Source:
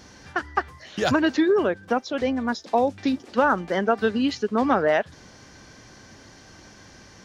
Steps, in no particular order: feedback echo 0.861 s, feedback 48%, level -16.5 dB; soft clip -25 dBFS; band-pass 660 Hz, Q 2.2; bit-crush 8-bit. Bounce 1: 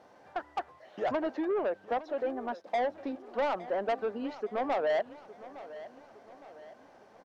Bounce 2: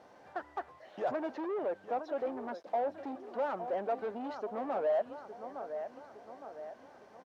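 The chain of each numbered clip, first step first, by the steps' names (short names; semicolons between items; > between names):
bit-crush > band-pass > soft clip > feedback echo; feedback echo > soft clip > bit-crush > band-pass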